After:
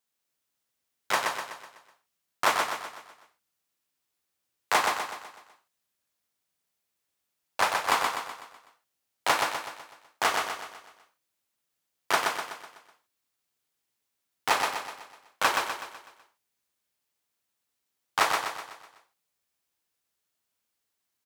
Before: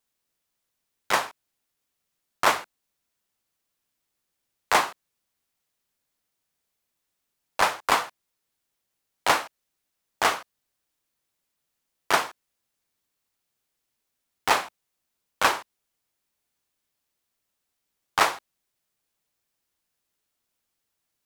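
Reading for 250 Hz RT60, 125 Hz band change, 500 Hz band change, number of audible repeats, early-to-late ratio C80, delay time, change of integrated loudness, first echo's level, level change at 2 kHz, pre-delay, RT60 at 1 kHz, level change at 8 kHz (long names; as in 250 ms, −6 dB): no reverb audible, −4.0 dB, −2.5 dB, 5, no reverb audible, 125 ms, −3.0 dB, −4.0 dB, −1.5 dB, no reverb audible, no reverb audible, −1.0 dB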